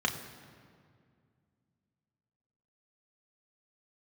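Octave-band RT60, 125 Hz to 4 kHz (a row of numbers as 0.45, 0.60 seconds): 3.1, 3.0, 2.3, 2.0, 1.8, 1.4 seconds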